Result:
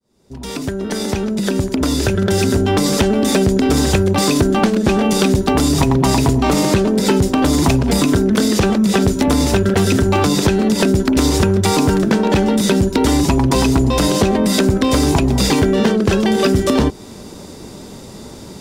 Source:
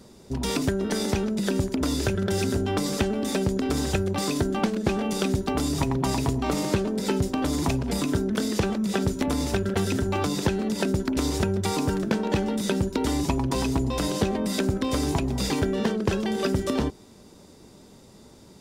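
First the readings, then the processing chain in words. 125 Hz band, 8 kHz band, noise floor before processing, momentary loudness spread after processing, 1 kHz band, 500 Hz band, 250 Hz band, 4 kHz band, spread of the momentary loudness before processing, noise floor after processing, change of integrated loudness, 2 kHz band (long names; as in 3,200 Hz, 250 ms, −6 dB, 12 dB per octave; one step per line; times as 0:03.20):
+10.5 dB, +11.0 dB, −50 dBFS, 9 LU, +11.0 dB, +10.5 dB, +11.0 dB, +11.0 dB, 1 LU, −35 dBFS, +11.0 dB, +10.0 dB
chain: fade in at the beginning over 3.10 s
in parallel at +2.5 dB: downward compressor 5 to 1, threshold −33 dBFS, peak gain reduction 14 dB
on the sum: gain into a clipping stage and back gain 15.5 dB
level +8.5 dB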